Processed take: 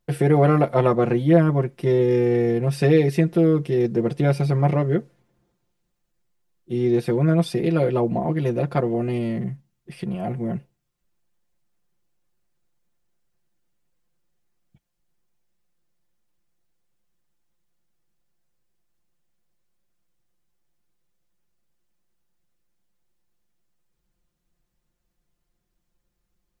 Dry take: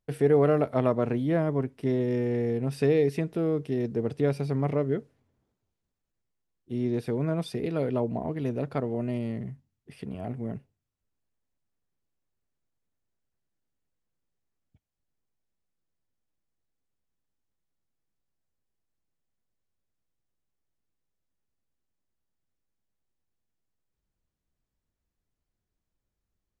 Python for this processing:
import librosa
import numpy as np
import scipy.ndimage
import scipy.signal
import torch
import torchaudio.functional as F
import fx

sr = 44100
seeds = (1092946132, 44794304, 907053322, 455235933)

y = x + 0.86 * np.pad(x, (int(5.7 * sr / 1000.0), 0))[:len(x)]
y = F.gain(torch.from_numpy(y), 6.0).numpy()